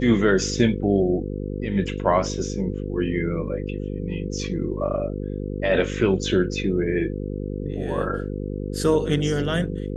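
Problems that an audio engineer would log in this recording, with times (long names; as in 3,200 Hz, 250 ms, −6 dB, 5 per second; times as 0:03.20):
mains buzz 50 Hz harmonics 10 −29 dBFS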